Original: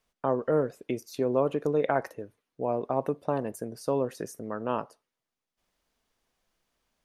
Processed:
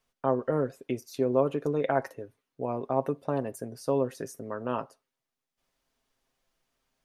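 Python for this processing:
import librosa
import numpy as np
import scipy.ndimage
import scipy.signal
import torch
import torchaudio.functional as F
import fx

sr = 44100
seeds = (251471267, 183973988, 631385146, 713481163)

y = x + 0.43 * np.pad(x, (int(7.5 * sr / 1000.0), 0))[:len(x)]
y = y * 10.0 ** (-1.5 / 20.0)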